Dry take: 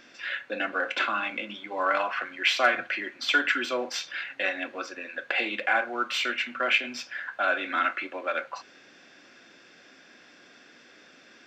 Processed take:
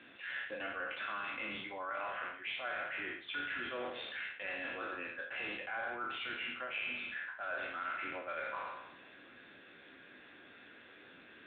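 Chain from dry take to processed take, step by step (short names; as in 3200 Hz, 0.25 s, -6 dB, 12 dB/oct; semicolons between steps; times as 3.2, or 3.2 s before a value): spectral trails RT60 1.00 s; reverse; compressor 6:1, threshold -34 dBFS, peak gain reduction 18 dB; reverse; gain -3 dB; AMR-NB 10.2 kbps 8000 Hz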